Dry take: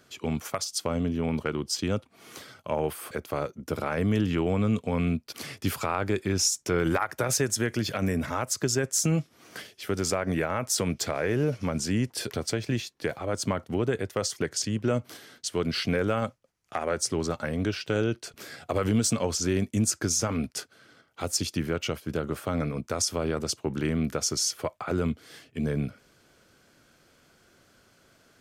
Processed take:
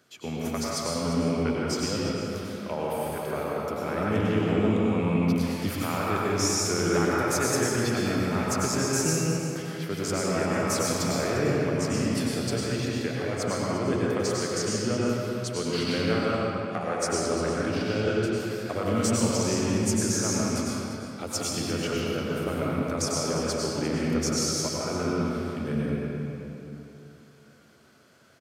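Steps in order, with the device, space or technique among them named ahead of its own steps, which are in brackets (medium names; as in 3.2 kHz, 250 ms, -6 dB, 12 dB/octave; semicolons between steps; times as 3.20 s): high-pass 97 Hz; cave (delay 348 ms -12.5 dB; reverberation RT60 3.1 s, pre-delay 90 ms, DRR -5.5 dB); trim -4.5 dB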